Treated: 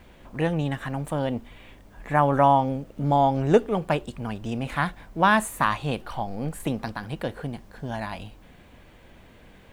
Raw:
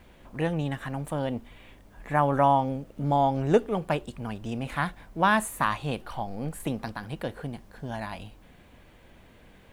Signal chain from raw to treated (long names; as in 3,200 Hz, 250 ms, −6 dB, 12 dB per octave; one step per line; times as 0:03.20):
parametric band 11,000 Hz −3.5 dB 0.37 octaves
level +3 dB